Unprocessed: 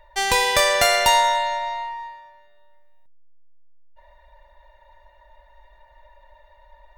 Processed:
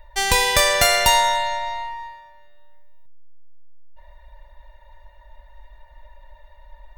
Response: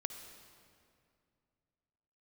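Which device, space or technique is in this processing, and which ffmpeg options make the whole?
smiley-face EQ: -af "lowshelf=f=170:g=8,equalizer=f=570:t=o:w=2.3:g=-3,highshelf=f=9.5k:g=5.5,volume=1.5dB"

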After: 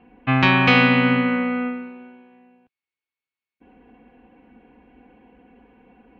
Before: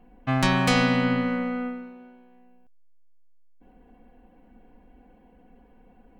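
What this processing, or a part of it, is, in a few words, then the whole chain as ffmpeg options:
guitar cabinet: -af "highpass=83,equalizer=f=180:t=q:w=4:g=-7,equalizer=f=620:t=q:w=4:g=-8,equalizer=f=2.5k:t=q:w=4:g=7,lowpass=f=3.6k:w=0.5412,lowpass=f=3.6k:w=1.3066,volume=6.5dB"

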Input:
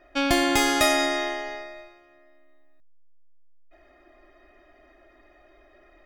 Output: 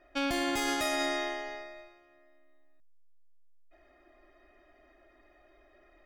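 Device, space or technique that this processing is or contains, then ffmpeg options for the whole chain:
limiter into clipper: -af "alimiter=limit=-15.5dB:level=0:latency=1:release=26,asoftclip=type=hard:threshold=-17.5dB,volume=-6dB"

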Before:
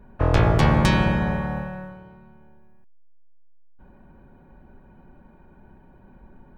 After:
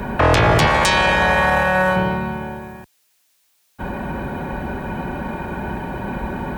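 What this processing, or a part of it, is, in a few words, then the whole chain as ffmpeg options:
mastering chain: -filter_complex "[0:a]highpass=51,equalizer=f=1.3k:t=o:w=0.55:g=-3,acrossover=split=360|1300[a][b][c];[a]acompressor=threshold=-29dB:ratio=4[d];[b]acompressor=threshold=-34dB:ratio=4[e];[c]acompressor=threshold=-40dB:ratio=4[f];[d][e][f]amix=inputs=3:normalize=0,acompressor=threshold=-33dB:ratio=2.5,asoftclip=type=tanh:threshold=-25dB,tiltshelf=f=670:g=-5,alimiter=level_in=34.5dB:limit=-1dB:release=50:level=0:latency=1,asettb=1/sr,asplit=3[g][h][i];[g]atrim=end=0.674[j];[h]atrim=start=0.67:end=1.96,asetpts=PTS-STARTPTS,afade=t=in:d=0.004:c=qsin,afade=t=out:st=1.286:d=0.004:c=qsin,equalizer=f=125:t=o:w=1:g=-9,equalizer=f=250:t=o:w=1:g=-8,equalizer=f=8k:t=o:w=1:g=6[k];[i]atrim=start=1.956[l];[j][k]acrossfade=d=0.004:c1=hsin:c2=qsin[m];[m][l]acrossfade=d=0.004:c1=qsin:c2=hsin,volume=-5.5dB"

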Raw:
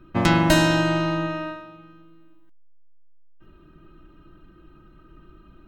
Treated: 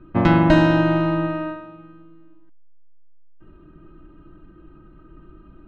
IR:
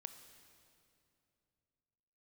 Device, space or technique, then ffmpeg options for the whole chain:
phone in a pocket: -af "lowpass=3.7k,equalizer=f=300:t=o:w=0.22:g=3,highshelf=f=2.3k:g=-11,volume=3.5dB"

